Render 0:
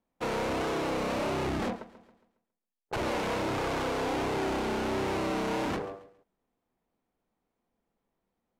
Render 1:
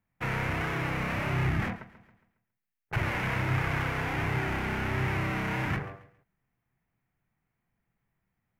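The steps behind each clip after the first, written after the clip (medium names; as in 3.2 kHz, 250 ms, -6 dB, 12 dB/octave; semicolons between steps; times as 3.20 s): ten-band graphic EQ 125 Hz +12 dB, 250 Hz -8 dB, 500 Hz -11 dB, 1 kHz -4 dB, 2 kHz +8 dB, 4 kHz -10 dB, 8 kHz -9 dB; trim +3.5 dB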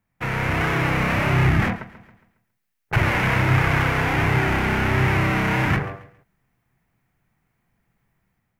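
level rider gain up to 5 dB; trim +5 dB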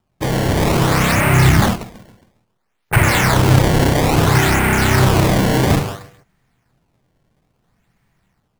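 decimation with a swept rate 20×, swing 160% 0.59 Hz; trim +6.5 dB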